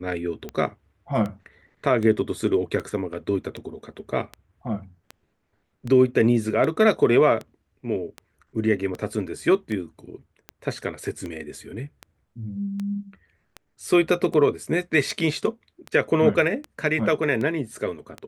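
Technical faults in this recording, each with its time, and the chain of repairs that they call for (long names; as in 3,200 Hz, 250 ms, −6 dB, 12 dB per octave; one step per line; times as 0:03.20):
scratch tick 78 rpm −19 dBFS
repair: click removal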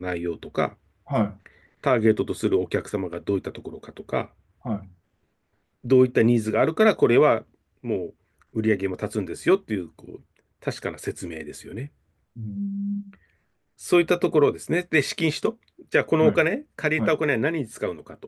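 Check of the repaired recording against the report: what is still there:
none of them is left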